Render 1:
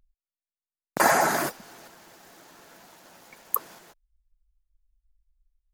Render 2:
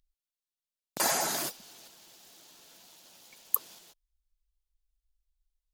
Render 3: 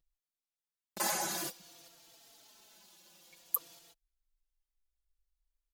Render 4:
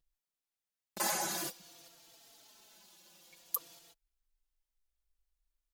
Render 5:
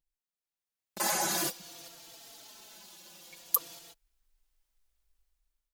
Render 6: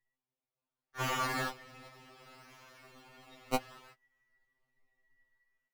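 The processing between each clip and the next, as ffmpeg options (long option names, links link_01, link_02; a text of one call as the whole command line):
ffmpeg -i in.wav -af "highshelf=frequency=2400:width_type=q:width=1.5:gain=9.5,volume=-10dB" out.wav
ffmpeg -i in.wav -filter_complex "[0:a]aecho=1:1:5.9:0.41,asplit=2[link_01][link_02];[link_02]adelay=3.8,afreqshift=-0.54[link_03];[link_01][link_03]amix=inputs=2:normalize=1,volume=-2.5dB" out.wav
ffmpeg -i in.wav -af "aeval=exprs='0.335*sin(PI/2*1.58*val(0)/0.335)':channel_layout=same,volume=-8dB" out.wav
ffmpeg -i in.wav -af "dynaudnorm=framelen=470:gausssize=5:maxgain=15.5dB,volume=-6dB" out.wav
ffmpeg -i in.wav -filter_complex "[0:a]afftfilt=real='real(if(between(b,1,1012),(2*floor((b-1)/92)+1)*92-b,b),0)':imag='imag(if(between(b,1,1012),(2*floor((b-1)/92)+1)*92-b,b),0)*if(between(b,1,1012),-1,1)':win_size=2048:overlap=0.75,acrossover=split=470|4100[link_01][link_02][link_03];[link_03]acrusher=samples=19:mix=1:aa=0.000001:lfo=1:lforange=19:lforate=0.66[link_04];[link_01][link_02][link_04]amix=inputs=3:normalize=0,afftfilt=real='re*2.45*eq(mod(b,6),0)':imag='im*2.45*eq(mod(b,6),0)':win_size=2048:overlap=0.75,volume=-1.5dB" out.wav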